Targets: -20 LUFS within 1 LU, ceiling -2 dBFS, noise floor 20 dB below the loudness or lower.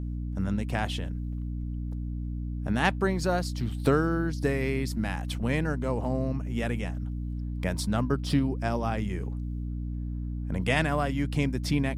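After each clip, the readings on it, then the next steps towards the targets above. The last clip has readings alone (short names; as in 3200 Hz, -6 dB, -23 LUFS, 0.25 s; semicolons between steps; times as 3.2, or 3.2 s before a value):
hum 60 Hz; harmonics up to 300 Hz; hum level -30 dBFS; loudness -29.5 LUFS; peak -8.0 dBFS; loudness target -20.0 LUFS
-> de-hum 60 Hz, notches 5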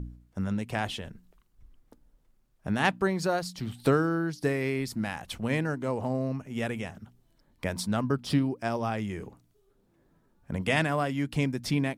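hum none; loudness -30.0 LUFS; peak -9.0 dBFS; loudness target -20.0 LUFS
-> gain +10 dB; limiter -2 dBFS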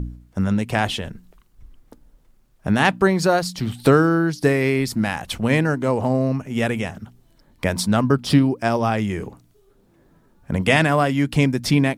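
loudness -20.0 LUFS; peak -2.0 dBFS; noise floor -58 dBFS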